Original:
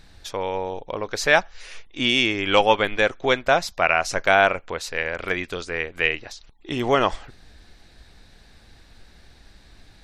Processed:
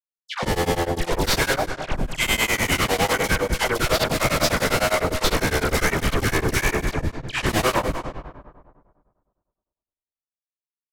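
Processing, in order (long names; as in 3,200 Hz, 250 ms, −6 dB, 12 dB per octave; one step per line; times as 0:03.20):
spectrum averaged block by block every 50 ms
high-pass filter 500 Hz 24 dB per octave
parametric band 2,400 Hz +7 dB 2 octaves
in parallel at +1.5 dB: brickwall limiter −10 dBFS, peak gain reduction 11.5 dB
on the sum: steady tone 7,900 Hz −46 dBFS
comparator with hysteresis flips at −23.5 dBFS
all-pass dispersion lows, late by 139 ms, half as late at 1,200 Hz
on a send: bucket-brigade delay 199 ms, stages 2,048, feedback 33%, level −13 dB
on the sum: dense smooth reverb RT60 1.5 s, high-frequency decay 0.75×, pre-delay 105 ms, DRR 9 dB
low-pass that shuts in the quiet parts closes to 1,700 Hz, open at −16 dBFS
wrong playback speed 48 kHz file played as 44.1 kHz
tremolo along a rectified sine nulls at 9.9 Hz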